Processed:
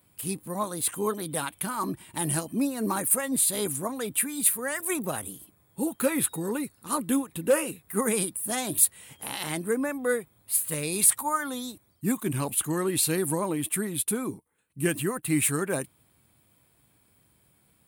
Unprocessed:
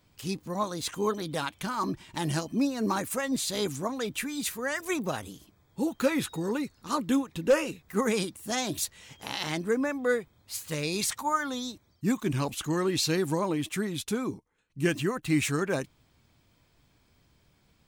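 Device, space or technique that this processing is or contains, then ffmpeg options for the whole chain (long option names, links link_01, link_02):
budget condenser microphone: -af "highpass=79,highshelf=frequency=7700:width_type=q:width=3:gain=10"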